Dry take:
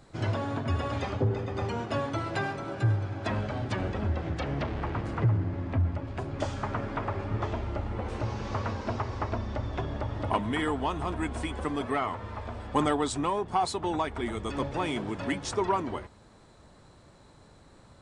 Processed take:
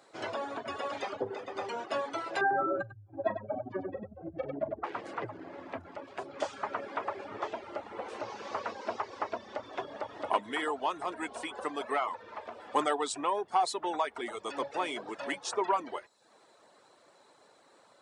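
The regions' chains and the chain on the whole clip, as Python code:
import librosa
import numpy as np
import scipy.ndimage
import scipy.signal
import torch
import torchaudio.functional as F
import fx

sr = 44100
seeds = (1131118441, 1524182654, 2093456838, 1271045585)

y = fx.chain(x, sr, fx.spec_expand(power=2.7),
    fx.echo_multitap(ms=(40, 97), db=(-12.0, -4.0)),
    fx.env_flatten(amount_pct=70), at=(2.41, 4.84))
y = fx.chain(y, sr, fx.self_delay(depth_ms=0.11),
    fx.high_shelf(hz=5500.0, db=-6.5), at=(12.22, 12.67))
y = scipy.signal.sosfilt(scipy.signal.cheby1(2, 1.0, 500.0, 'highpass', fs=sr, output='sos'), y)
y = fx.dereverb_blind(y, sr, rt60_s=0.58)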